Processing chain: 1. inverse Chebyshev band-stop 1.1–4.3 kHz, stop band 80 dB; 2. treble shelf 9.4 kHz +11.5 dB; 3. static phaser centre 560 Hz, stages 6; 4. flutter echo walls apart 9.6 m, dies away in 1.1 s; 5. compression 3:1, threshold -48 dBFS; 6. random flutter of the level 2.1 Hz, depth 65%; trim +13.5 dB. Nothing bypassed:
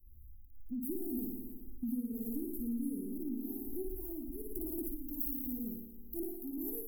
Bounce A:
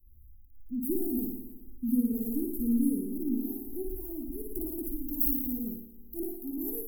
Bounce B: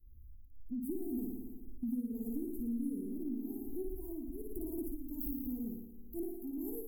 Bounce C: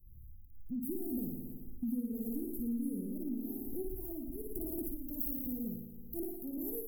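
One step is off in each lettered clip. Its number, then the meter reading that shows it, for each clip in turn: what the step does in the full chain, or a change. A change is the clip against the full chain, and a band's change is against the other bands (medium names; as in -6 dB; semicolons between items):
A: 5, mean gain reduction 4.5 dB; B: 2, 8 kHz band -6.0 dB; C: 3, 125 Hz band +4.0 dB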